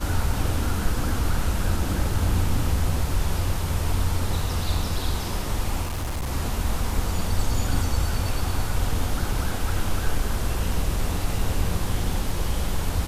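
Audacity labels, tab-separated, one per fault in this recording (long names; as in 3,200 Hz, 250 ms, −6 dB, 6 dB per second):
5.820000	6.310000	clipping −24 dBFS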